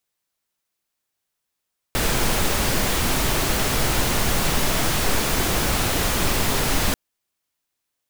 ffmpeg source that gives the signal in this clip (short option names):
-f lavfi -i "anoisesrc=c=pink:a=0.484:d=4.99:r=44100:seed=1"